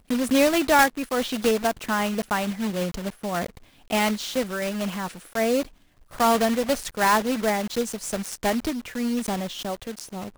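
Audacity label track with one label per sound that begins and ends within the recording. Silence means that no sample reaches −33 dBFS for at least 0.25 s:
3.900000	5.630000	sound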